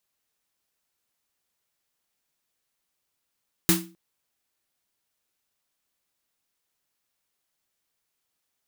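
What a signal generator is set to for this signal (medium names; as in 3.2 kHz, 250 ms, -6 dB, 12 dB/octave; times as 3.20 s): snare drum length 0.26 s, tones 180 Hz, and 330 Hz, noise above 750 Hz, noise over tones 1.5 dB, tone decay 0.38 s, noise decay 0.27 s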